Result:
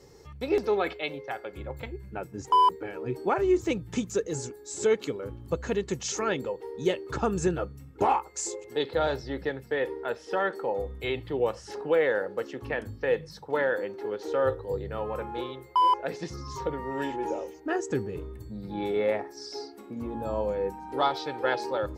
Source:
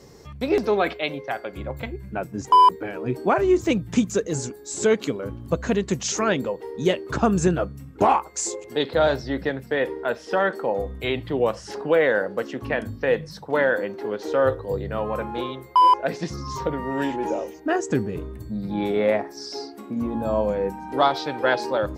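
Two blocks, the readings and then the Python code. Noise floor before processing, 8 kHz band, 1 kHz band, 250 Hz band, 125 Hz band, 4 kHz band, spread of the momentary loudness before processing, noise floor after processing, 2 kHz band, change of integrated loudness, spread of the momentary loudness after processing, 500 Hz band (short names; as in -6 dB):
-43 dBFS, -6.0 dB, -6.5 dB, -8.0 dB, -7.5 dB, -6.0 dB, 12 LU, -49 dBFS, -6.5 dB, -6.0 dB, 13 LU, -5.0 dB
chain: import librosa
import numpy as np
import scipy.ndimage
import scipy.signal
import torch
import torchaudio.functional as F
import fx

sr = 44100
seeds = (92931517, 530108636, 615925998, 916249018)

y = x + 0.37 * np.pad(x, (int(2.3 * sr / 1000.0), 0))[:len(x)]
y = y * 10.0 ** (-6.5 / 20.0)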